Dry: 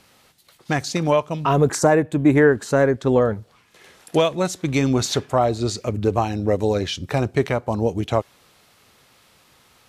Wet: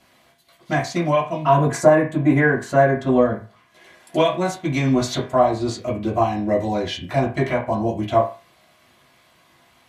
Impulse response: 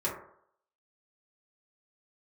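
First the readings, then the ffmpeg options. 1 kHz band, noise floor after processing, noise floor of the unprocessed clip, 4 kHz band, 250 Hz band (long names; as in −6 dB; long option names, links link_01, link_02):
+3.0 dB, −57 dBFS, −57 dBFS, −2.0 dB, 0.0 dB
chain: -filter_complex "[1:a]atrim=start_sample=2205,asetrate=79380,aresample=44100[link_01];[0:a][link_01]afir=irnorm=-1:irlink=0,volume=-2dB"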